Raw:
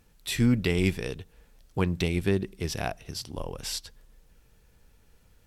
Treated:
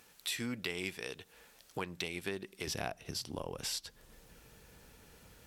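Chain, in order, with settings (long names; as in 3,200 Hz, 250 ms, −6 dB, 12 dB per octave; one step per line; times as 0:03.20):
high-pass filter 840 Hz 6 dB per octave, from 0:02.67 150 Hz
downward compressor 2.5 to 1, threshold −49 dBFS, peak gain reduction 15.5 dB
level +7.5 dB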